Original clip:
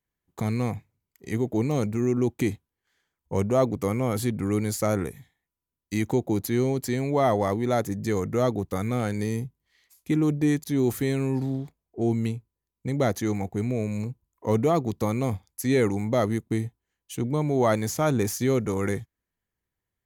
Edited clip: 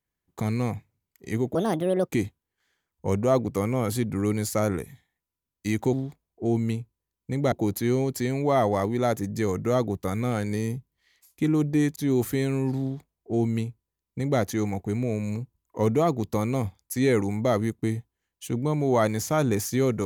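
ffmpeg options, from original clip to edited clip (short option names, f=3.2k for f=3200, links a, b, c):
-filter_complex "[0:a]asplit=5[a][b][c][d][e];[a]atrim=end=1.554[f];[b]atrim=start=1.55:end=2.36,asetpts=PTS-STARTPTS,asetrate=66150,aresample=44100[g];[c]atrim=start=2.356:end=6.202[h];[d]atrim=start=11.488:end=13.082[i];[e]atrim=start=6.198[j];[f][g]acrossfade=d=0.004:c1=hsin:c2=hsin[k];[k][h]acrossfade=d=0.004:c1=hsin:c2=hsin[l];[l][i]acrossfade=d=0.004:c1=hsin:c2=hsin[m];[m][j]acrossfade=d=0.004:c1=hsin:c2=hsin"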